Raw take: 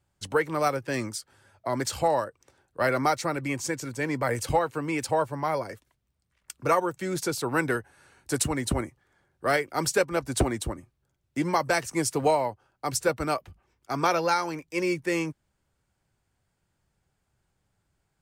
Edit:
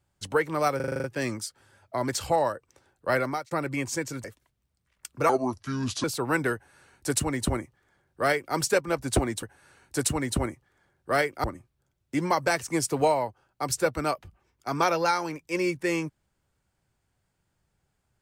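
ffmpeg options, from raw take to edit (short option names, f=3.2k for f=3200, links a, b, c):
-filter_complex "[0:a]asplit=14[a][b][c][d][e][f][g][h][i][j][k][l][m][n];[a]atrim=end=0.802[o];[b]atrim=start=0.758:end=0.802[p];[c]atrim=start=0.758:end=0.802[q];[d]atrim=start=0.758:end=0.802[r];[e]atrim=start=0.758:end=0.802[s];[f]atrim=start=0.758:end=0.802[t];[g]atrim=start=0.758:end=0.802[u];[h]atrim=start=0.758:end=3.23,asetpts=PTS-STARTPTS,afade=t=out:st=2.122:d=0.35[v];[i]atrim=start=3.23:end=3.962,asetpts=PTS-STARTPTS,afade=t=in:d=0.004:c=hsin[w];[j]atrim=start=5.688:end=6.744[x];[k]atrim=start=6.74:end=7.28,asetpts=PTS-STARTPTS,asetrate=31752,aresample=44100[y];[l]atrim=start=7.276:end=10.672[z];[m]atrim=start=7.778:end=9.792[aa];[n]atrim=start=10.668[ab];[o][p]acrossfade=d=0.004:c1=hsin:c2=hsin[ac];[ac][q]acrossfade=d=0.004:c1=hsin:c2=hsin[ad];[ad][r]acrossfade=d=0.004:c1=hsin:c2=hsin[ae];[ae][s]acrossfade=d=0.004:c1=hsin:c2=hsin[af];[af][t]acrossfade=d=0.004:c1=hsin:c2=hsin[ag];[ag][u]acrossfade=d=0.004:c1=hsin:c2=hsin[ah];[v][w]concat=n=2:v=0:a=1[ai];[ah][ai]acrossfade=d=0.004:c1=hsin:c2=hsin[aj];[aj][x]acrossfade=d=0.004:c1=hsin:c2=hsin[ak];[ak][y]acrossfade=d=0.004:c1=hsin:c2=hsin[al];[al][z]acrossfade=d=0.004:c1=hsin:c2=hsin[am];[am][aa]acrossfade=d=0.004:c1=hsin:c2=hsin[an];[an][ab]acrossfade=d=0.004:c1=hsin:c2=hsin"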